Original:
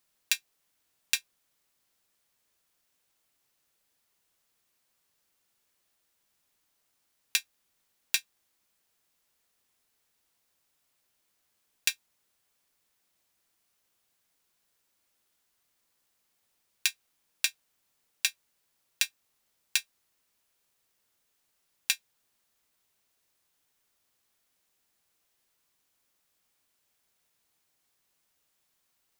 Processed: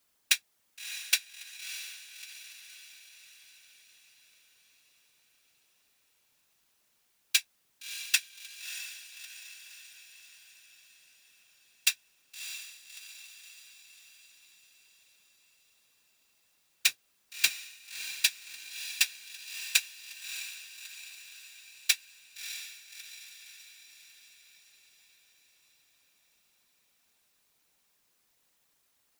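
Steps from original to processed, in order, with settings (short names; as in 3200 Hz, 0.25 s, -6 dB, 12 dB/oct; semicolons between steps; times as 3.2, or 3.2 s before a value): 16.87–17.49 modulation noise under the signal 16 dB; whisperiser; diffused feedback echo 0.632 s, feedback 55%, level -10 dB; gain +2.5 dB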